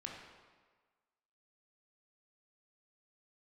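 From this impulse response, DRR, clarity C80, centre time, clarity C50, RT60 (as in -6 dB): -1.0 dB, 4.0 dB, 63 ms, 2.0 dB, 1.5 s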